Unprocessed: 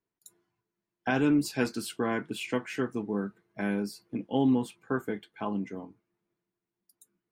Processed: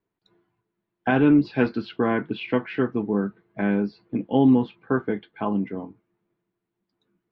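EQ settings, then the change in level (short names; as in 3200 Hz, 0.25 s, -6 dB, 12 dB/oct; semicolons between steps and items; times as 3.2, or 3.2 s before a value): Chebyshev low-pass 4200 Hz, order 3; air absorption 280 m; +8.0 dB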